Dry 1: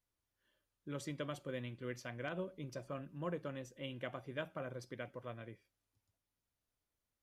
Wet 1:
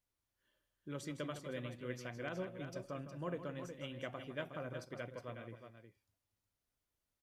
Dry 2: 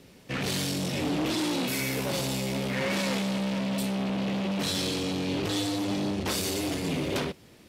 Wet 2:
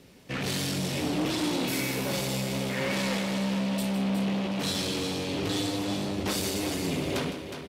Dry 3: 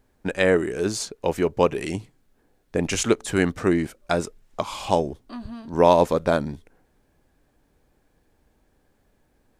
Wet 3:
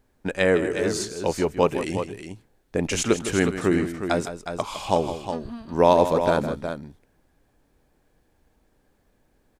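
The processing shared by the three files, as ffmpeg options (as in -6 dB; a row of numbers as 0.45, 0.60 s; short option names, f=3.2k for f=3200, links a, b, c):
-af "aecho=1:1:159|364:0.282|0.376,volume=-1dB"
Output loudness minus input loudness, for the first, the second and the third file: 0.0, 0.0, -0.5 LU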